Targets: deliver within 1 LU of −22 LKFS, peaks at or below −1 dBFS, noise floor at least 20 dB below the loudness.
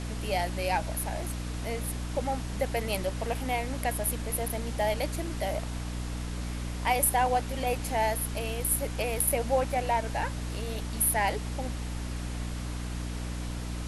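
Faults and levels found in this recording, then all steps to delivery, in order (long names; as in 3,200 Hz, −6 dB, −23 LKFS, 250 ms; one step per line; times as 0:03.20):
mains hum 60 Hz; hum harmonics up to 300 Hz; level of the hum −32 dBFS; background noise floor −35 dBFS; target noise floor −51 dBFS; integrated loudness −30.5 LKFS; sample peak −10.0 dBFS; target loudness −22.0 LKFS
→ mains-hum notches 60/120/180/240/300 Hz
noise reduction from a noise print 16 dB
level +8.5 dB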